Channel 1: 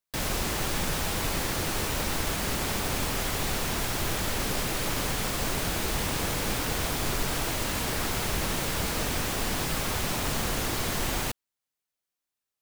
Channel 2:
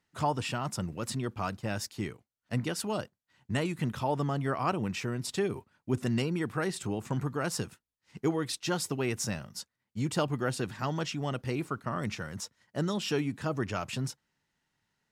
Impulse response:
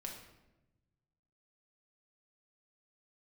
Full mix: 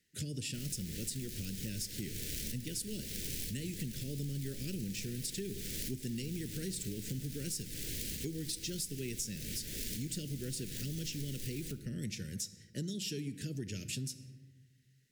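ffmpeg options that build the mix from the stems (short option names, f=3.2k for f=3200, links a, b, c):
-filter_complex "[0:a]aeval=exprs='(mod(11.9*val(0)+1,2)-1)/11.9':c=same,adelay=400,volume=-2.5dB,asplit=2[a][b];[b]volume=-12.5dB[c];[1:a]aemphasis=mode=production:type=cd,volume=-1.5dB,asplit=3[d][e][f];[e]volume=-6dB[g];[f]apad=whole_len=573799[h];[a][h]sidechaincompress=threshold=-46dB:ratio=4:attack=8.8:release=310[i];[2:a]atrim=start_sample=2205[j];[c][g]amix=inputs=2:normalize=0[k];[k][j]afir=irnorm=-1:irlink=0[l];[i][d][l]amix=inputs=3:normalize=0,acrossover=split=360|3000[m][n][o];[n]acompressor=threshold=-51dB:ratio=2.5[p];[m][p][o]amix=inputs=3:normalize=0,asuperstop=centerf=930:order=8:qfactor=0.8,acompressor=threshold=-36dB:ratio=6"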